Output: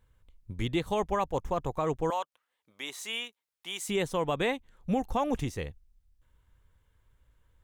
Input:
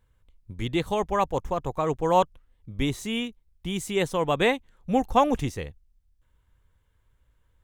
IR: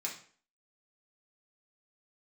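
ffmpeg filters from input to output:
-filter_complex "[0:a]alimiter=limit=-18.5dB:level=0:latency=1:release=275,asettb=1/sr,asplit=3[link_01][link_02][link_03];[link_01]atrim=end=2.104[link_04];[link_02]atrim=start=2.1:end=3.89,asetpts=PTS-STARTPTS,afade=type=in:duration=0.004:curve=qsin,afade=type=out:start_time=1.786:duration=0.004:curve=qsin,highpass=780[link_05];[link_03]atrim=start=3.886[link_06];[link_04][link_05]acrossfade=duration=0.004:curve1=hsin:curve2=qsin[link_07];[link_07][link_06]acrossfade=duration=0.004:curve1=qsin:curve2=hsin"

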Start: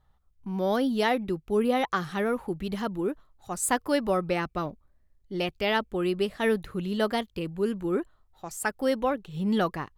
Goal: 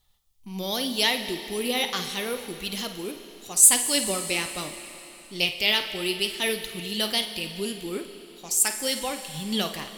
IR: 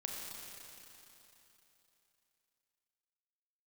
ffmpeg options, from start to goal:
-filter_complex "[0:a]flanger=delay=2.3:depth=9.4:regen=64:speed=0.77:shape=triangular,asplit=2[link_01][link_02];[link_02]equalizer=frequency=180:width=2:gain=-6[link_03];[1:a]atrim=start_sample=2205,adelay=52[link_04];[link_03][link_04]afir=irnorm=-1:irlink=0,volume=-7.5dB[link_05];[link_01][link_05]amix=inputs=2:normalize=0,aexciter=amount=6.4:drive=6.6:freq=2200,volume=-1dB"

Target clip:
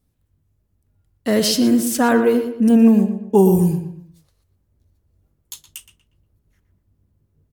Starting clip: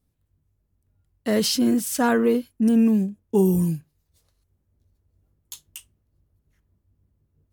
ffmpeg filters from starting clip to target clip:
ffmpeg -i in.wav -filter_complex "[0:a]asettb=1/sr,asplit=3[link_01][link_02][link_03];[link_01]atrim=end=2.704[link_04];[link_02]atrim=start=2.7:end=3.58,asetpts=PTS-STARTPTS,afade=type=in:duration=0.004:curve=qsin,afade=type=out:start_time=0.876:duration=0.004:curve=qsin,equalizer=frequency=750:width=1.2:gain=8.5[link_05];[link_03]atrim=start=3.576[link_06];[link_04][link_05]acrossfade=duration=0.004:curve1=hsin:curve2=qsin[link_07];[link_07][link_06]acrossfade=duration=0.004:curve1=qsin:curve2=hsin,asplit=2[link_08][link_09];[link_09]adelay=119,lowpass=frequency=2700:poles=1,volume=-8.5dB,asplit=2[link_10][link_11];[link_11]adelay=119,lowpass=frequency=2700:poles=1,volume=0.38,asplit=2[link_12][link_13];[link_13]adelay=119,lowpass=frequency=2700:poles=1,volume=0.38,asplit=2[link_14][link_15];[link_15]adelay=119,lowpass=frequency=2700:poles=1,volume=0.38[link_16];[link_08][link_10][link_12][link_14][link_16]amix=inputs=5:normalize=0,volume=4dB" out.wav

